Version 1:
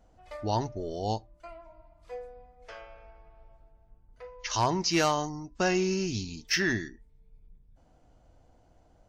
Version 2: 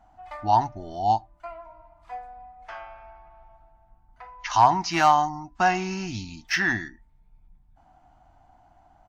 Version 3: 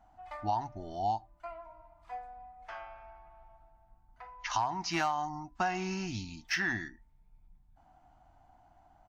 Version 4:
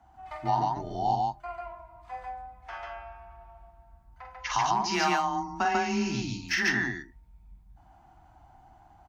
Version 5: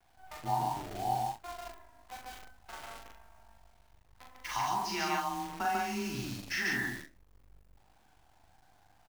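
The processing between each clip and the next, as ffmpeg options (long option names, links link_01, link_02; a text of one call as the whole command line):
ffmpeg -i in.wav -af "firequalizer=gain_entry='entry(320,0);entry(470,-16);entry(740,14);entry(1100,9);entry(2500,3);entry(5000,-3)':delay=0.05:min_phase=1" out.wav
ffmpeg -i in.wav -af "acompressor=threshold=-22dB:ratio=10,volume=-5dB" out.wav
ffmpeg -i in.wav -af "aecho=1:1:46.65|142.9:0.562|0.891,afreqshift=20,volume=3dB" out.wav
ffmpeg -i in.wav -filter_complex "[0:a]acrusher=bits=7:dc=4:mix=0:aa=0.000001,asplit=2[link_01][link_02];[link_02]aecho=0:1:40|67:0.668|0.211[link_03];[link_01][link_03]amix=inputs=2:normalize=0,volume=-8dB" out.wav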